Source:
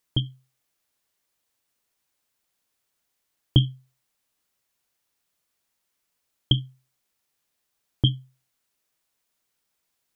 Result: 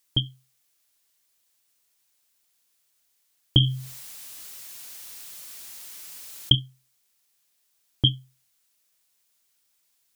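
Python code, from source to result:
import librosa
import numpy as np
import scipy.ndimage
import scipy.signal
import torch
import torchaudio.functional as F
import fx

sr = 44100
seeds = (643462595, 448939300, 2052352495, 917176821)

y = fx.high_shelf(x, sr, hz=2300.0, db=11.0)
y = fx.env_flatten(y, sr, amount_pct=50, at=(3.6, 6.55))
y = F.gain(torch.from_numpy(y), -2.5).numpy()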